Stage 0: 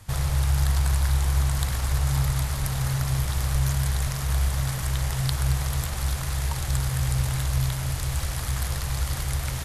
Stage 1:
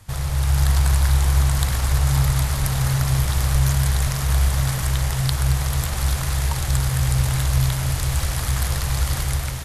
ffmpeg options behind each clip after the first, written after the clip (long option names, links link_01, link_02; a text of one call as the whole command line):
ffmpeg -i in.wav -af "dynaudnorm=framelen=180:gausssize=5:maxgain=5.5dB" out.wav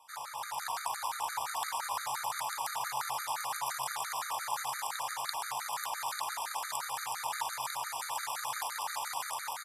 ffmpeg -i in.wav -af "highpass=frequency=910:width_type=q:width=4.9,aecho=1:1:899:0.531,afftfilt=real='re*gt(sin(2*PI*5.8*pts/sr)*(1-2*mod(floor(b*sr/1024/1200),2)),0)':imag='im*gt(sin(2*PI*5.8*pts/sr)*(1-2*mod(floor(b*sr/1024/1200),2)),0)':win_size=1024:overlap=0.75,volume=-8.5dB" out.wav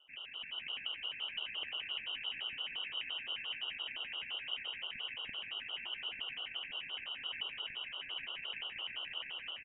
ffmpeg -i in.wav -filter_complex "[0:a]asplit=2[link_01][link_02];[link_02]aecho=0:1:185|370|555|740:0.251|0.1|0.0402|0.0161[link_03];[link_01][link_03]amix=inputs=2:normalize=0,lowpass=frequency=3300:width_type=q:width=0.5098,lowpass=frequency=3300:width_type=q:width=0.6013,lowpass=frequency=3300:width_type=q:width=0.9,lowpass=frequency=3300:width_type=q:width=2.563,afreqshift=-3900,volume=-5dB" out.wav